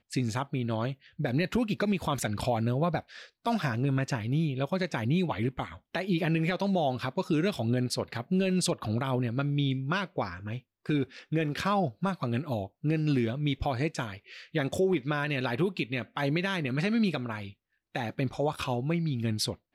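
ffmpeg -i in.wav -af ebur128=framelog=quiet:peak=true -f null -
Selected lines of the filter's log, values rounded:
Integrated loudness:
  I:         -30.2 LUFS
  Threshold: -40.3 LUFS
Loudness range:
  LRA:         1.8 LU
  Threshold: -50.2 LUFS
  LRA low:   -31.0 LUFS
  LRA high:  -29.2 LUFS
True peak:
  Peak:      -17.6 dBFS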